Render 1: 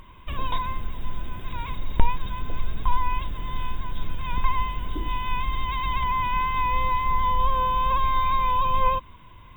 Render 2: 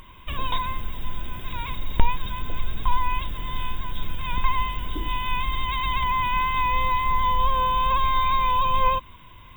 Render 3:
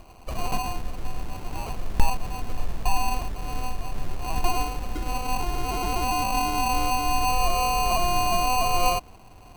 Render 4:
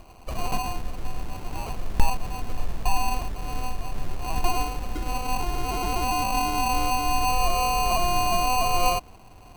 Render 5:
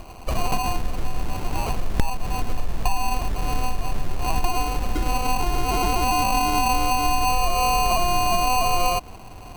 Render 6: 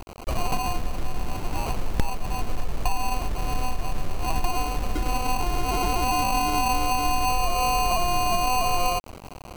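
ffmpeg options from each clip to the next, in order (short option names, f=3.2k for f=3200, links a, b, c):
-af "highshelf=f=2.6k:g=8.5"
-af "acrusher=samples=25:mix=1:aa=0.000001,volume=-1.5dB"
-af anull
-af "acompressor=threshold=-25dB:ratio=4,volume=8dB"
-af "acrusher=bits=5:mix=0:aa=0.000001,volume=-2.5dB"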